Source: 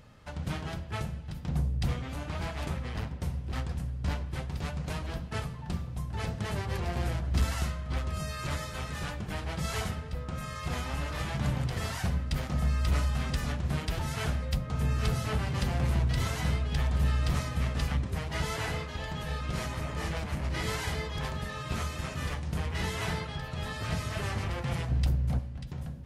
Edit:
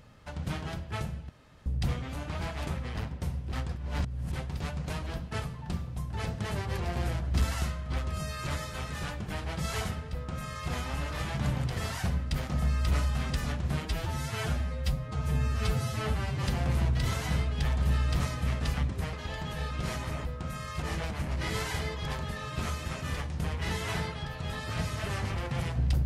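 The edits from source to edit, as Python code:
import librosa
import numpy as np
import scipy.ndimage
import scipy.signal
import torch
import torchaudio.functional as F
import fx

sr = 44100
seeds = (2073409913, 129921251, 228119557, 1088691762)

y = fx.edit(x, sr, fx.room_tone_fill(start_s=1.29, length_s=0.37),
    fx.reverse_span(start_s=3.76, length_s=0.57),
    fx.duplicate(start_s=10.13, length_s=0.57, to_s=19.95),
    fx.stretch_span(start_s=13.85, length_s=1.72, factor=1.5),
    fx.cut(start_s=18.27, length_s=0.56), tone=tone)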